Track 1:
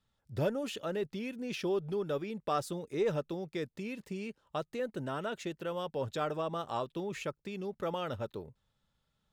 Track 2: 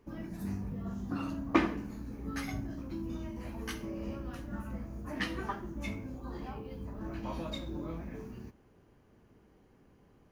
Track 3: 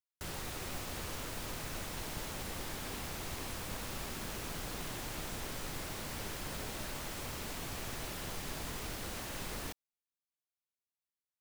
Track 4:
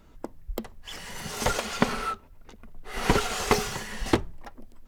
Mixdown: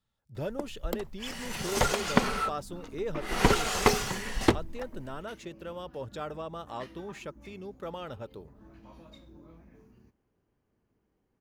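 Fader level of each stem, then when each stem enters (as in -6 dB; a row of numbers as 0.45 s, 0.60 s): -3.5 dB, -13.5 dB, mute, 0.0 dB; 0.00 s, 1.60 s, mute, 0.35 s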